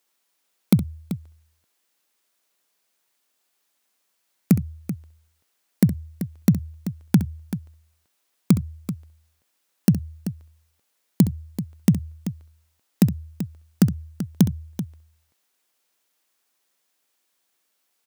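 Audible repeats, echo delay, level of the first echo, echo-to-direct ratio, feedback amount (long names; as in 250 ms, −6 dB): 2, 66 ms, −13.5 dB, −9.5 dB, repeats not evenly spaced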